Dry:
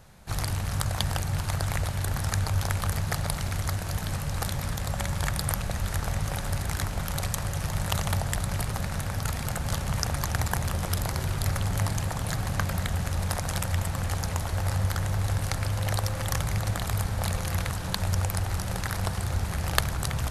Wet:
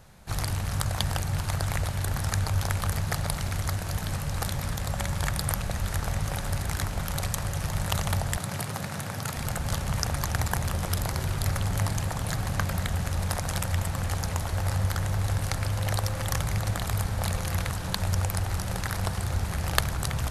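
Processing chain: 8.37–9.37 s: high-pass 110 Hz 24 dB/octave

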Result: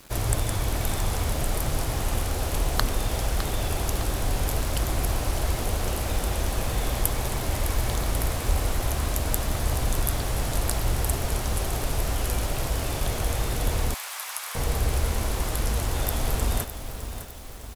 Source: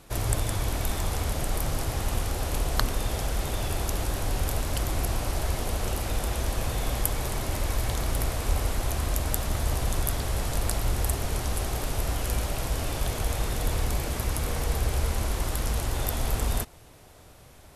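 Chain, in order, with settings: feedback delay 608 ms, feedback 49%, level -10.5 dB; bit crusher 8-bit; 13.94–14.55 s: high-pass 910 Hz 24 dB/octave; trim +1.5 dB

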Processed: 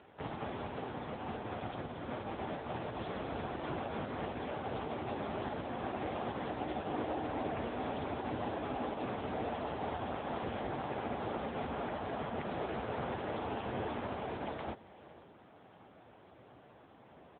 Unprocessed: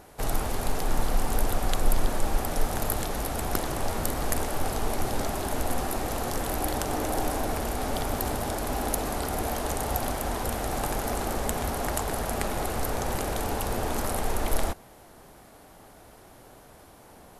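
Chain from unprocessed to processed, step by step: 13.19–13.62 s: hum notches 50/100/150/200 Hz; on a send: delay 499 ms -21 dB; on the sum: peak limiter -19.5 dBFS, peak gain reduction 10 dB; trim -3.5 dB; AMR-NB 6.7 kbps 8 kHz

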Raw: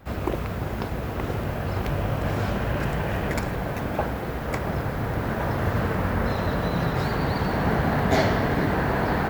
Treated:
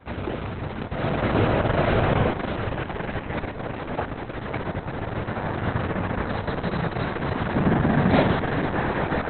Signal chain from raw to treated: high-pass 71 Hz 12 dB/octave; 0.89–2.12 s: reverb throw, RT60 1.8 s, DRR -7.5 dB; 7.52–8.31 s: dynamic bell 210 Hz, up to +7 dB, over -37 dBFS, Q 0.83; Opus 6 kbps 48 kHz

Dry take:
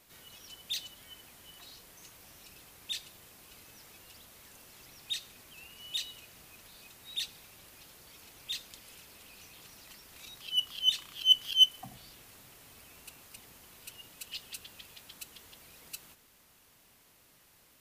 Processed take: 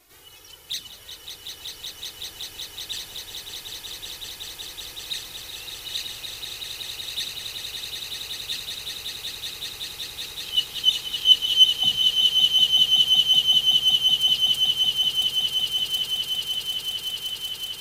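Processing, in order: touch-sensitive flanger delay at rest 2.9 ms, full sweep at -29 dBFS; echo with a slow build-up 188 ms, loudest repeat 8, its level -5 dB; trim +7.5 dB

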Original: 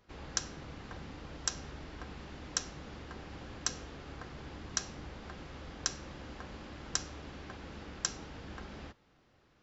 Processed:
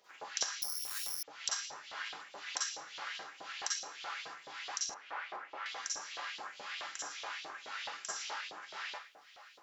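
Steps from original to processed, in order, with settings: phase shifter stages 2, 1.9 Hz, lowest notch 140–4300 Hz; harmonic-percussive split harmonic +8 dB; dynamic bell 4.9 kHz, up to +4 dB, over -48 dBFS, Q 0.75; Schroeder reverb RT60 0.37 s, DRR -8 dB; 0.62–1.23 s: careless resampling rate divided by 8×, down none, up zero stuff; 4.94–5.66 s: three-band isolator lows -18 dB, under 240 Hz, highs -21 dB, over 2.3 kHz; compression 3:1, threshold -39 dBFS, peak gain reduction 17.5 dB; LFO high-pass saw up 4.7 Hz 620–3700 Hz

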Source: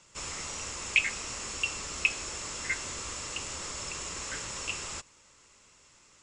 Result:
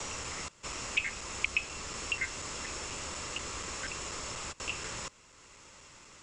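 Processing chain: slices played last to first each 242 ms, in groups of 3; treble shelf 5.5 kHz -6 dB; three bands compressed up and down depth 40%

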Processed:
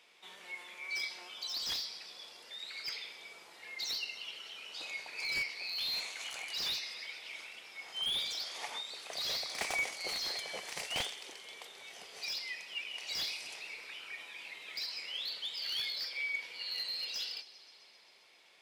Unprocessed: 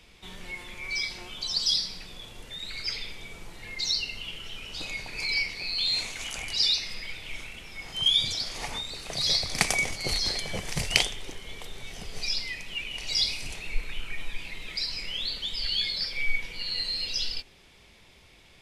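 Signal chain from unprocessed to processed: high-pass 550 Hz 12 dB/octave; treble shelf 3.2 kHz -4 dB; feedback echo behind a high-pass 132 ms, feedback 76%, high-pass 3.5 kHz, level -17.5 dB; slew-rate limiter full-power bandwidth 140 Hz; trim -4.5 dB

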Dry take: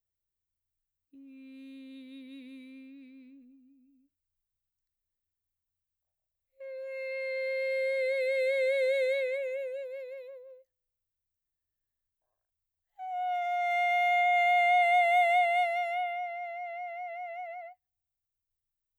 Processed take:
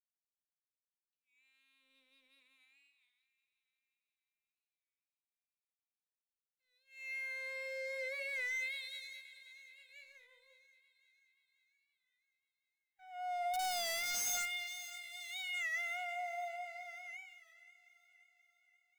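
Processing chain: peaking EQ 250 Hz -8.5 dB 1.3 oct; hum notches 60/120/180/240/300/360/420/480/540 Hz; LFO high-pass sine 0.35 Hz 820–5200 Hz; integer overflow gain 23 dB; power-law waveshaper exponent 1.4; saturation -34.5 dBFS, distortion -8 dB; two-band feedback delay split 1.1 kHz, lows 131 ms, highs 530 ms, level -15 dB; on a send at -13.5 dB: reverberation RT60 0.45 s, pre-delay 4 ms; on the sum: warped record 33 1/3 rpm, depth 100 cents; trim -1 dB

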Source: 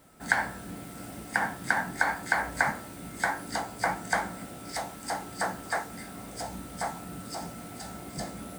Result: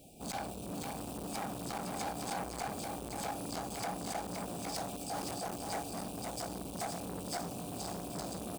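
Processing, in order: FFT band-reject 840–2300 Hz; compression, threshold -32 dBFS, peak gain reduction 6.5 dB; 4.95–5.56 s: transient shaper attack -11 dB, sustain +9 dB; wavefolder -32 dBFS; delay 520 ms -4.5 dB; transformer saturation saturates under 850 Hz; trim +2.5 dB

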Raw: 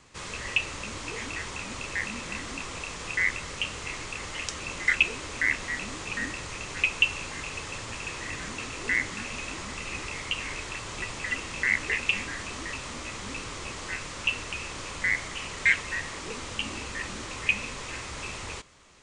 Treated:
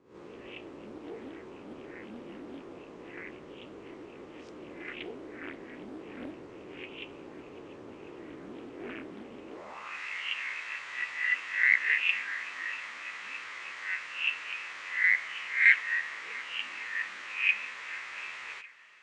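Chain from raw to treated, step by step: reverse spectral sustain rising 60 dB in 0.46 s; peaking EQ 77 Hz -4 dB 1.1 oct; on a send: shuffle delay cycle 1150 ms, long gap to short 1.5:1, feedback 45%, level -22 dB; on the sum: band-pass sweep 340 Hz -> 1.9 kHz, 9.46–10.01 s; loudspeaker Doppler distortion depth 0.54 ms; trim +1.5 dB

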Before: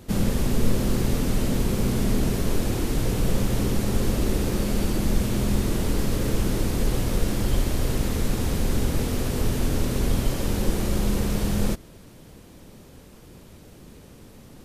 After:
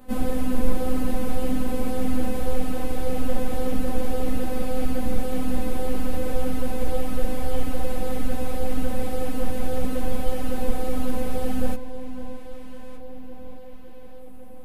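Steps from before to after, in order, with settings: robot voice 255 Hz; FFT filter 270 Hz 0 dB, 690 Hz +4 dB, 3.3 kHz -6 dB, 6.1 kHz -12 dB, 10 kHz -4 dB; on a send: echo whose repeats swap between lows and highs 610 ms, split 970 Hz, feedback 72%, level -13.5 dB; on the sum: three-phase chorus; trim +4.5 dB

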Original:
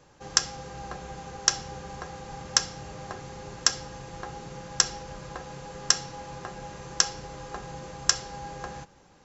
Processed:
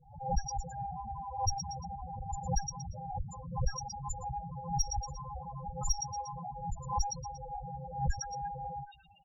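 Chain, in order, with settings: comb filter that takes the minimum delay 1.4 ms; ever faster or slower copies 295 ms, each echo +4 st, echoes 3, each echo -6 dB; on a send: band-passed feedback delay 119 ms, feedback 80%, band-pass 2.9 kHz, level -8.5 dB; on the sum: loudest bins only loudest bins 4; resampled via 16 kHz; in parallel at -6.5 dB: saturation -30.5 dBFS, distortion -8 dB; on the sum: dynamic bell 2 kHz, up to +5 dB, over -58 dBFS, Q 0.76; swell ahead of each attack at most 110 dB/s

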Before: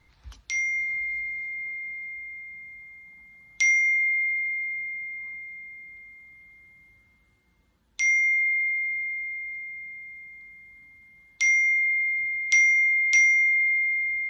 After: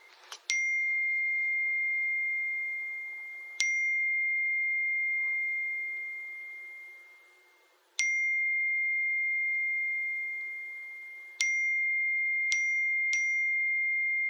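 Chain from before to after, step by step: brick-wall FIR high-pass 330 Hz; compression 12:1, threshold -37 dBFS, peak gain reduction 21 dB; trim +9 dB

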